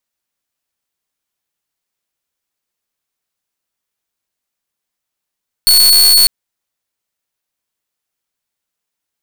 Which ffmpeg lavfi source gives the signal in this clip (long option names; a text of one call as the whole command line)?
ffmpeg -f lavfi -i "aevalsrc='0.708*(2*mod(4410*t,1)-1)':duration=0.6:sample_rate=44100" out.wav